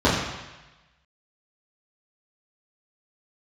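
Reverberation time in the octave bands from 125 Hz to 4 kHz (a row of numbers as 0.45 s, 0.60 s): 1.2 s, 0.95 s, 1.0 s, 1.1 s, 1.2 s, 1.2 s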